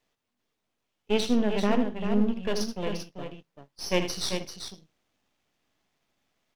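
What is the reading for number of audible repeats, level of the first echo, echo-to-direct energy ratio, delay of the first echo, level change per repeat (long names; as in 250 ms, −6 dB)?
2, −10.0 dB, −5.5 dB, 78 ms, repeats not evenly spaced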